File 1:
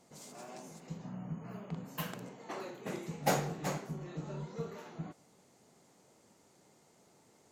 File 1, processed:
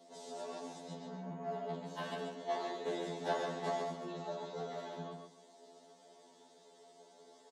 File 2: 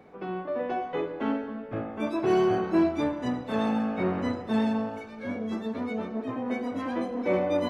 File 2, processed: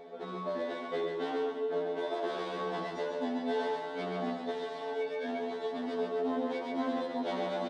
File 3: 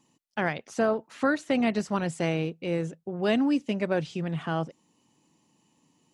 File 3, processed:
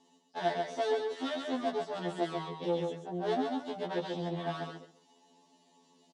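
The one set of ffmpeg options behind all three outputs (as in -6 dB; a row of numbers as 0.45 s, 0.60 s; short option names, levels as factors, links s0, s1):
-filter_complex "[0:a]aeval=exprs='if(lt(val(0),0),0.708*val(0),val(0))':c=same,acrossover=split=2500[s0][s1];[s1]acompressor=threshold=0.00224:ratio=4:attack=1:release=60[s2];[s0][s2]amix=inputs=2:normalize=0,aecho=1:1:4.5:0.95,asplit=2[s3][s4];[s4]acompressor=threshold=0.02:ratio=6,volume=1[s5];[s3][s5]amix=inputs=2:normalize=0,asoftclip=type=hard:threshold=0.0531,highpass=320,equalizer=f=360:t=q:w=4:g=10,equalizer=f=710:t=q:w=4:g=8,equalizer=f=1300:t=q:w=4:g=-6,equalizer=f=2400:t=q:w=4:g=-9,equalizer=f=3600:t=q:w=4:g=8,equalizer=f=7000:t=q:w=4:g=-5,lowpass=f=8700:w=0.5412,lowpass=f=8700:w=1.3066,aecho=1:1:136|272|408:0.596|0.101|0.0172,afftfilt=real='re*2*eq(mod(b,4),0)':imag='im*2*eq(mod(b,4),0)':win_size=2048:overlap=0.75,volume=0.708"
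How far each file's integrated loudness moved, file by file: -1.0 LU, -6.0 LU, -6.5 LU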